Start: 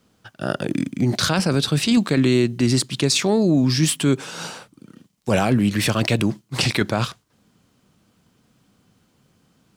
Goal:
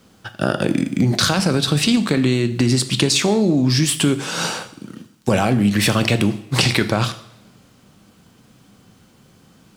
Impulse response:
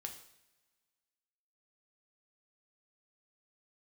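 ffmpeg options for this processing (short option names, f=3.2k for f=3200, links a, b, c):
-filter_complex "[0:a]acompressor=threshold=-23dB:ratio=6,asplit=2[a][b];[1:a]atrim=start_sample=2205[c];[b][c]afir=irnorm=-1:irlink=0,volume=5dB[d];[a][d]amix=inputs=2:normalize=0,volume=3dB"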